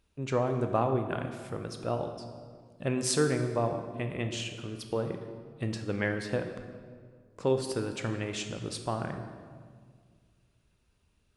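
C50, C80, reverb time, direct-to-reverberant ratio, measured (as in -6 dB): 7.5 dB, 8.5 dB, 1.9 s, 5.5 dB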